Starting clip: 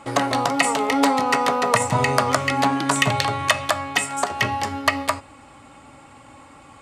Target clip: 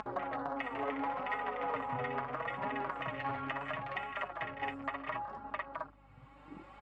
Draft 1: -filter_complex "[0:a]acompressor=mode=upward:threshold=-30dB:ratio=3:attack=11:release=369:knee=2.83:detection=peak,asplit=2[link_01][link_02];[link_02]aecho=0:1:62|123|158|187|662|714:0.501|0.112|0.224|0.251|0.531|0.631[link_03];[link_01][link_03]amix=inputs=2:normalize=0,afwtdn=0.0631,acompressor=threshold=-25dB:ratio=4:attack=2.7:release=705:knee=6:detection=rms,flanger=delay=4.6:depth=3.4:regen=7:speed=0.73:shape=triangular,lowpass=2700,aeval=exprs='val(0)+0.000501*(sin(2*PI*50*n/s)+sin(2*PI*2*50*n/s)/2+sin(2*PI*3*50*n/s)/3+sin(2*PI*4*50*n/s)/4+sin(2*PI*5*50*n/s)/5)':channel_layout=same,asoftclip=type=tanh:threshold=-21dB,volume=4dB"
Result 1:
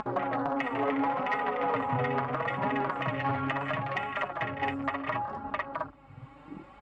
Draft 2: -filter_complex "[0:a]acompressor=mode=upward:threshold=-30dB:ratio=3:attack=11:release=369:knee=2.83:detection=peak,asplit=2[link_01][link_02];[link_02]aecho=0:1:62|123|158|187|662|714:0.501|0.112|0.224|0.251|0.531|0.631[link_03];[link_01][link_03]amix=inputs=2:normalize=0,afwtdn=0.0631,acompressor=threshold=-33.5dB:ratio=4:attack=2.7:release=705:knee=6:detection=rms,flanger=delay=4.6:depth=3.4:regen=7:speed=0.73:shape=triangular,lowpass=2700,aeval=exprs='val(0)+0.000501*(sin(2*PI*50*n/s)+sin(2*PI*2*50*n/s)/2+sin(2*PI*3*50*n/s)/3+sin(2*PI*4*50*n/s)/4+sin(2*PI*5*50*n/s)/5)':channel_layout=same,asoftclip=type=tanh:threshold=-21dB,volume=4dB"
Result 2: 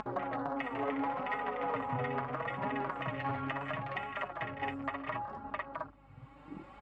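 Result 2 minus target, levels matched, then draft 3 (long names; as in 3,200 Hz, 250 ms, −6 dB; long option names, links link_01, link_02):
250 Hz band +3.0 dB
-filter_complex "[0:a]acompressor=mode=upward:threshold=-30dB:ratio=3:attack=11:release=369:knee=2.83:detection=peak,asplit=2[link_01][link_02];[link_02]aecho=0:1:62|123|158|187|662|714:0.501|0.112|0.224|0.251|0.531|0.631[link_03];[link_01][link_03]amix=inputs=2:normalize=0,afwtdn=0.0631,acompressor=threshold=-33.5dB:ratio=4:attack=2.7:release=705:knee=6:detection=rms,flanger=delay=4.6:depth=3.4:regen=7:speed=0.73:shape=triangular,lowpass=2700,lowshelf=frequency=310:gain=-7.5,aeval=exprs='val(0)+0.000501*(sin(2*PI*50*n/s)+sin(2*PI*2*50*n/s)/2+sin(2*PI*3*50*n/s)/3+sin(2*PI*4*50*n/s)/4+sin(2*PI*5*50*n/s)/5)':channel_layout=same,asoftclip=type=tanh:threshold=-21dB,volume=4dB"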